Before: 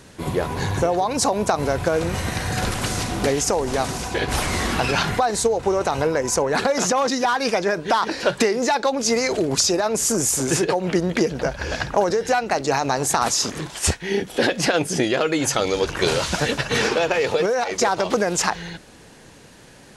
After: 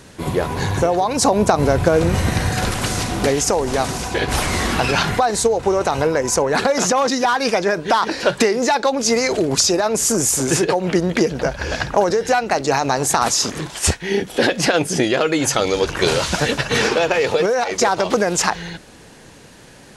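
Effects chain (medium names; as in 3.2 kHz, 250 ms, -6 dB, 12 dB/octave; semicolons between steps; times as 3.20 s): 1.24–2.49 s: bass shelf 490 Hz +5.5 dB; trim +3 dB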